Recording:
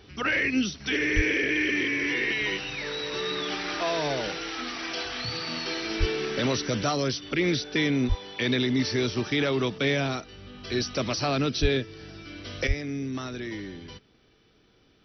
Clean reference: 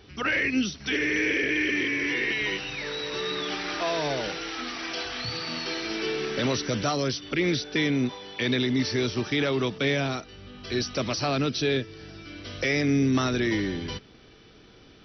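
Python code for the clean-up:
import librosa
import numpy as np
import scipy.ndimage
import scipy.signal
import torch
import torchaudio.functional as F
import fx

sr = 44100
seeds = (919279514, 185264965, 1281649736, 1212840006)

y = fx.fix_deplosive(x, sr, at_s=(1.15, 5.99, 8.08, 11.61, 12.67))
y = fx.gain(y, sr, db=fx.steps((0.0, 0.0), (12.67, 9.5)))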